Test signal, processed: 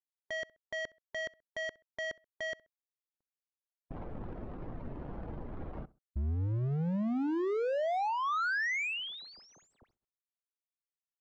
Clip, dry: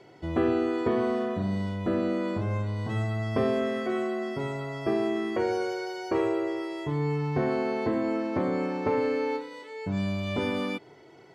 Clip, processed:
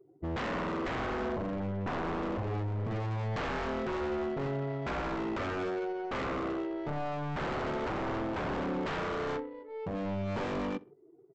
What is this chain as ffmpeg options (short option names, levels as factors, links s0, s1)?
-filter_complex "[0:a]afftdn=nr=19:nf=-42,adynamicsmooth=sensitivity=3.5:basefreq=630,adynamicequalizer=threshold=0.00251:dfrequency=980:dqfactor=4.9:tfrequency=980:tqfactor=4.9:attack=5:release=100:ratio=0.375:range=1.5:mode=cutabove:tftype=bell,aresample=16000,aeval=exprs='0.0355*(abs(mod(val(0)/0.0355+3,4)-2)-1)':c=same,aresample=44100,aemphasis=mode=reproduction:type=cd,asplit=2[s0][s1];[s1]adelay=65,lowpass=f=2400:p=1,volume=0.0841,asplit=2[s2][s3];[s3]adelay=65,lowpass=f=2400:p=1,volume=0.32[s4];[s2][s4]amix=inputs=2:normalize=0[s5];[s0][s5]amix=inputs=2:normalize=0"